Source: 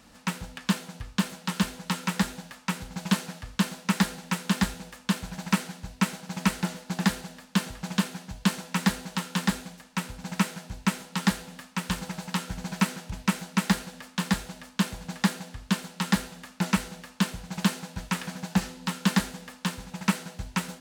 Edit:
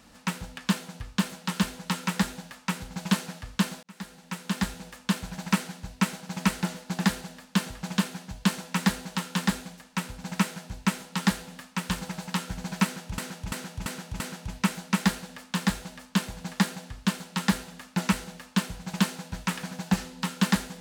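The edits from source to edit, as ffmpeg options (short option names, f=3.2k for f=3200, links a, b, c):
-filter_complex "[0:a]asplit=6[a][b][c][d][e][f];[a]atrim=end=3.83,asetpts=PTS-STARTPTS,afade=t=out:st=3.826:d=0.004:c=hsin[g];[b]atrim=start=3.83:end=13.182,asetpts=PTS-STARTPTS,afade=t=in:d=1.09[h];[c]atrim=start=12.838:end=13.182[i];[d]atrim=start=12.838:end=13.182[j];[e]atrim=start=12.838:end=13.182[k];[f]atrim=start=12.838[l];[g][h]concat=n=2:v=0:a=1[m];[m][i]acrossfade=d=0.004:c1=hsin:c2=hsin[n];[n][j]acrossfade=d=0.004:c1=hsin:c2=hsin[o];[o][k]acrossfade=d=0.004:c1=hsin:c2=hsin[p];[p][l]acrossfade=d=0.004:c1=hsin:c2=hsin"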